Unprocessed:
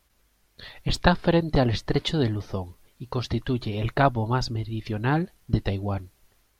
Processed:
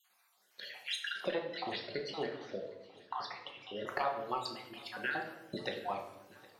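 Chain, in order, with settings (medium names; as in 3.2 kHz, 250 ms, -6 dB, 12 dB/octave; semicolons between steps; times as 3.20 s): random holes in the spectrogram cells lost 51%; high-pass 600 Hz 12 dB/octave; compression 3:1, threshold -34 dBFS, peak gain reduction 13 dB; 1.29–3.87 s: distance through air 170 m; shuffle delay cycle 1273 ms, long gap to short 1.5:1, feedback 45%, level -23 dB; simulated room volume 320 m³, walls mixed, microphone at 0.97 m; trim -1 dB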